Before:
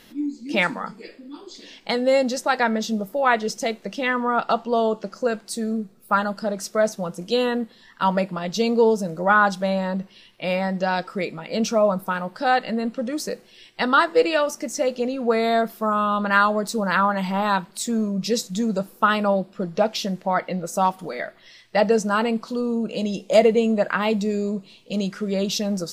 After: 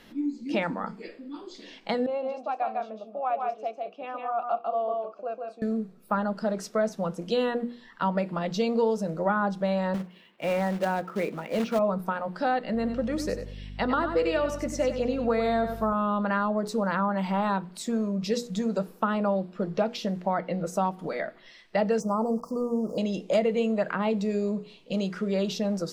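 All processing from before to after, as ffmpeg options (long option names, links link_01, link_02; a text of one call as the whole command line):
ffmpeg -i in.wav -filter_complex "[0:a]asettb=1/sr,asplit=3[link_01][link_02][link_03];[link_01]atrim=end=2.064[link_04];[link_02]atrim=start=2.06:end=5.62,asetpts=PTS-STARTPTS,afade=type=in:duration=0.004:curve=qsin,afade=type=out:start_time=3.556:duration=0.004:curve=qsin,asplit=3[link_05][link_06][link_07];[link_05]bandpass=frequency=730:width_type=q:width=8,volume=0dB[link_08];[link_06]bandpass=frequency=1090:width_type=q:width=8,volume=-6dB[link_09];[link_07]bandpass=frequency=2440:width_type=q:width=8,volume=-9dB[link_10];[link_08][link_09][link_10]amix=inputs=3:normalize=0,equalizer=frequency=300:width_type=o:width=0.53:gain=7,aecho=1:1:150|184:0.668|0.211,atrim=end_sample=156996[link_11];[link_03]atrim=start=5.616[link_12];[link_04][link_11]acrossfade=duration=0.004:curve1=hsin:curve2=qsin[link_13];[link_13][link_12]acrossfade=duration=0.004:curve1=qsin:curve2=hsin,asettb=1/sr,asplit=3[link_14][link_15][link_16];[link_14]atrim=end=9.944[link_17];[link_15]atrim=start=9.94:end=11.79,asetpts=PTS-STARTPTS,afade=type=in:duration=0.004:curve=qsin,afade=type=out:start_time=1.846:duration=0.004:curve=qsin,highpass=150,lowpass=2700,acrusher=bits=3:mode=log:mix=0:aa=0.000001[link_18];[link_16]atrim=start=11.786[link_19];[link_17][link_18]acrossfade=duration=0.004:curve1=hsin:curve2=qsin[link_20];[link_20][link_19]acrossfade=duration=0.004:curve1=qsin:curve2=hsin,asettb=1/sr,asplit=3[link_21][link_22][link_23];[link_21]atrim=end=12.744[link_24];[link_22]atrim=start=12.74:end=15.93,asetpts=PTS-STARTPTS,afade=type=in:duration=0.004:curve=qsin,afade=type=out:start_time=3.186:duration=0.004:curve=qsin,aecho=1:1:95|190|285:0.316|0.0727|0.0167,atrim=end_sample=140679,aeval=exprs='val(0)+0.0126*(sin(2*PI*50*n/s)+sin(2*PI*2*50*n/s)/2+sin(2*PI*3*50*n/s)/3+sin(2*PI*4*50*n/s)/4+sin(2*PI*5*50*n/s)/5)':channel_layout=same[link_25];[link_23]atrim=start=15.926[link_26];[link_24][link_25]acrossfade=duration=0.004:curve1=hsin:curve2=qsin[link_27];[link_27][link_26]acrossfade=duration=0.004:curve1=qsin:curve2=hsin,asettb=1/sr,asplit=3[link_28][link_29][link_30];[link_28]atrim=end=22.004[link_31];[link_29]atrim=start=22:end=22.98,asetpts=PTS-STARTPTS,afade=type=in:duration=0.004:curve=qsin,afade=type=out:start_time=0.976:duration=0.004:curve=qsin,aeval=exprs='val(0)*gte(abs(val(0)),0.0106)':channel_layout=same,asuperstop=centerf=2500:order=20:qfactor=0.69[link_32];[link_30]atrim=start=22.976[link_33];[link_31][link_32]acrossfade=duration=0.004:curve1=hsin:curve2=qsin[link_34];[link_34][link_33]acrossfade=duration=0.004:curve1=qsin:curve2=hsin,highshelf=frequency=4200:gain=-11.5,bandreject=frequency=60:width_type=h:width=6,bandreject=frequency=120:width_type=h:width=6,bandreject=frequency=180:width_type=h:width=6,bandreject=frequency=240:width_type=h:width=6,bandreject=frequency=300:width_type=h:width=6,bandreject=frequency=360:width_type=h:width=6,bandreject=frequency=420:width_type=h:width=6,bandreject=frequency=480:width_type=h:width=6,acrossover=split=430|990[link_35][link_36][link_37];[link_35]acompressor=threshold=-27dB:ratio=4[link_38];[link_36]acompressor=threshold=-29dB:ratio=4[link_39];[link_37]acompressor=threshold=-34dB:ratio=4[link_40];[link_38][link_39][link_40]amix=inputs=3:normalize=0" out.wav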